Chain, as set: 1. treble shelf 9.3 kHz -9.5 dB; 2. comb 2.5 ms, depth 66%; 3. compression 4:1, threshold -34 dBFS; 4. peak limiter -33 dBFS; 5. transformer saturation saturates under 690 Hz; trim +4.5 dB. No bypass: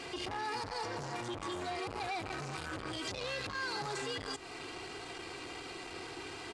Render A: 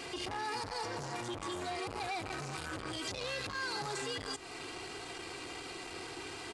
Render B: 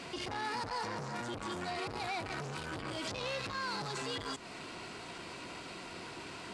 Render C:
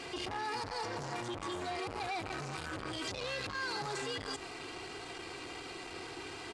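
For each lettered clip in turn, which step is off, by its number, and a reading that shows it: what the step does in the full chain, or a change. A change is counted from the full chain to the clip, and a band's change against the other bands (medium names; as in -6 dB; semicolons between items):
1, 8 kHz band +3.0 dB; 2, 125 Hz band +1.5 dB; 3, mean gain reduction 7.0 dB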